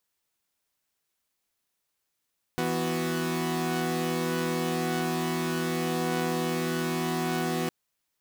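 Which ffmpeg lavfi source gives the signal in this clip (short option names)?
-f lavfi -i "aevalsrc='0.0376*((2*mod(164.81*t,1)-1)+(2*mod(246.94*t,1)-1)+(2*mod(369.99*t,1)-1))':d=5.11:s=44100"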